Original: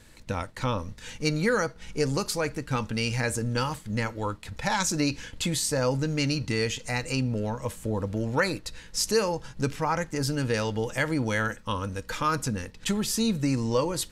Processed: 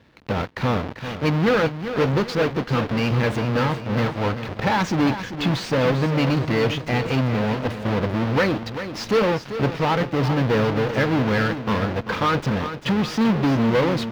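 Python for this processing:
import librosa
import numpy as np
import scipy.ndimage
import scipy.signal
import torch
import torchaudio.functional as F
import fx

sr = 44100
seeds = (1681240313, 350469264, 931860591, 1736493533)

p1 = fx.halfwave_hold(x, sr)
p2 = scipy.signal.sosfilt(scipy.signal.butter(2, 110.0, 'highpass', fs=sr, output='sos'), p1)
p3 = fx.high_shelf(p2, sr, hz=4700.0, db=10.0)
p4 = fx.fuzz(p3, sr, gain_db=30.0, gate_db=-37.0)
p5 = p3 + (p4 * 10.0 ** (-5.0 / 20.0))
p6 = fx.air_absorb(p5, sr, metres=300.0)
p7 = fx.echo_feedback(p6, sr, ms=392, feedback_pct=39, wet_db=-10.5)
y = p7 * 10.0 ** (-3.0 / 20.0)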